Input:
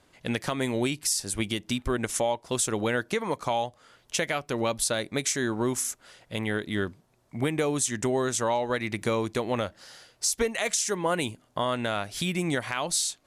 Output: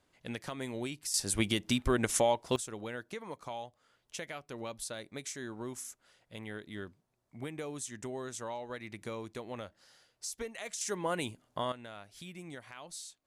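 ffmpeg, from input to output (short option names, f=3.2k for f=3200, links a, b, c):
-af "asetnsamples=n=441:p=0,asendcmd='1.14 volume volume -1dB;2.56 volume volume -14dB;10.81 volume volume -7dB;11.72 volume volume -18.5dB',volume=-11dB"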